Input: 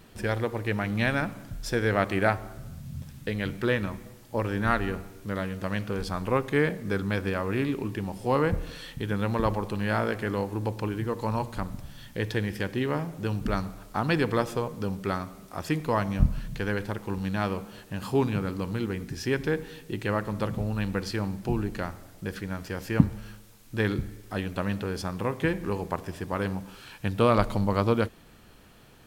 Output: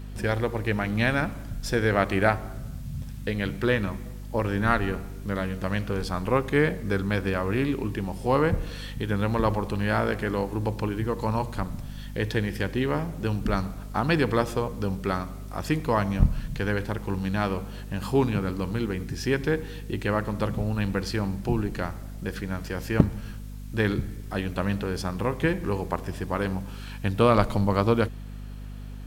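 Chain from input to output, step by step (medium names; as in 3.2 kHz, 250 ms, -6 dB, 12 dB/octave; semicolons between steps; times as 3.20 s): one-sided wavefolder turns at -11.5 dBFS; crackle 160 per s -57 dBFS; hum 50 Hz, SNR 11 dB; trim +2 dB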